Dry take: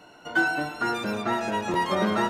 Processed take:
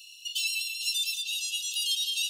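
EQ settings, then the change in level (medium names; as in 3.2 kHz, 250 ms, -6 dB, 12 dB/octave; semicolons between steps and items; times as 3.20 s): brick-wall FIR high-pass 2.6 kHz; treble shelf 6.4 kHz +9 dB; +8.5 dB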